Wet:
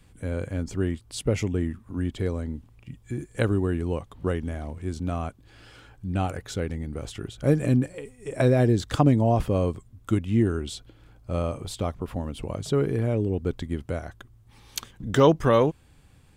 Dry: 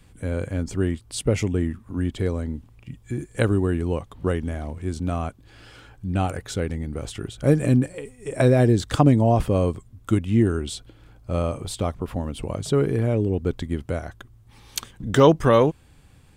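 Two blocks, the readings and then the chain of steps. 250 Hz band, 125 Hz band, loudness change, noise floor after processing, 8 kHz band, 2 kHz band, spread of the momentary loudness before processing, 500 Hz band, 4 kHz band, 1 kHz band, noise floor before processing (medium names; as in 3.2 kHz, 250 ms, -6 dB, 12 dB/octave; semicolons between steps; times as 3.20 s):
-3.0 dB, -3.0 dB, -3.0 dB, -56 dBFS, -4.5 dB, -3.0 dB, 15 LU, -3.0 dB, -3.0 dB, -3.0 dB, -53 dBFS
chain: dynamic bell 8.7 kHz, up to -5 dB, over -57 dBFS, Q 5.4; trim -3 dB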